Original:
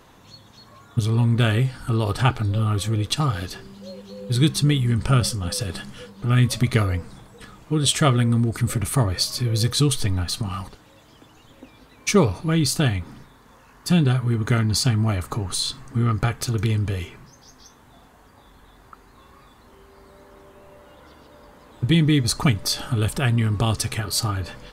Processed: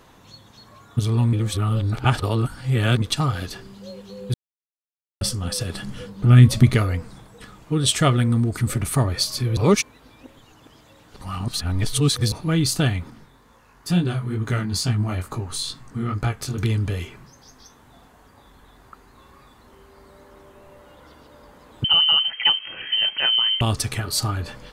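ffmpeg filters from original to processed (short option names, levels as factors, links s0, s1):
-filter_complex "[0:a]asettb=1/sr,asplit=3[s0][s1][s2];[s0]atrim=end=5.824[s3];[s1]atrim=start=5.82:end=6.75,asetpts=PTS-STARTPTS,afade=t=in:d=0.004:c=qsin,afade=t=out:st=0.926:d=0.004:c=qsin,lowshelf=f=390:g=8[s4];[s2]atrim=start=6.746[s5];[s3][s4]acrossfade=d=0.004:c1=hsin:c2=qsin[s6];[s6][s5]acrossfade=d=0.004:c1=qsin:c2=hsin,asettb=1/sr,asplit=3[s7][s8][s9];[s7]atrim=end=13.104[s10];[s8]atrim=start=13.1:end=16.58,asetpts=PTS-STARTPTS,afade=t=in:d=0.004:c=qsin,afade=t=out:st=3.476:d=0.004:c=qsin,flanger=delay=17:depth=5.4:speed=2.2[s11];[s9]atrim=start=16.576[s12];[s10][s11]acrossfade=d=0.004:c1=hsin:c2=qsin[s13];[s13][s12]acrossfade=d=0.004:c1=qsin:c2=hsin,asettb=1/sr,asplit=3[s14][s15][s16];[s14]atrim=end=21.844[s17];[s15]atrim=start=21.84:end=23.61,asetpts=PTS-STARTPTS,afade=t=in:d=0.004:c=qsin,afade=t=out:st=1.766:d=0.004:c=qsin,lowpass=f=2700:t=q:w=0.5098,lowpass=f=2700:t=q:w=0.6013,lowpass=f=2700:t=q:w=0.9,lowpass=f=2700:t=q:w=2.563,afreqshift=-3200[s18];[s16]atrim=start=23.606[s19];[s17][s18]acrossfade=d=0.004:c1=hsin:c2=qsin[s20];[s20][s19]acrossfade=d=0.004:c1=qsin:c2=hsin,asplit=7[s21][s22][s23][s24][s25][s26][s27];[s21]atrim=end=1.332[s28];[s22]atrim=start=1.328:end=3.022,asetpts=PTS-STARTPTS,areverse[s29];[s23]atrim=start=3.018:end=4.34,asetpts=PTS-STARTPTS,afade=t=out:st=1.318:d=0.004:c=hsin[s30];[s24]atrim=start=4.34:end=5.21,asetpts=PTS-STARTPTS,volume=0[s31];[s25]atrim=start=5.21:end=9.572,asetpts=PTS-STARTPTS,afade=t=in:d=0.004:c=hsin[s32];[s26]atrim=start=9.568:end=12.322,asetpts=PTS-STARTPTS,areverse[s33];[s27]atrim=start=12.318[s34];[s28][s29]acrossfade=d=0.004:c1=hsin:c2=hsin[s35];[s30][s31][s32]concat=n=3:v=0:a=1[s36];[s35][s36]acrossfade=d=0.004:c1=hsin:c2=hsin[s37];[s37][s33]acrossfade=d=0.004:c1=hsin:c2=hsin[s38];[s38][s34]acrossfade=d=0.004:c1=hsin:c2=hsin"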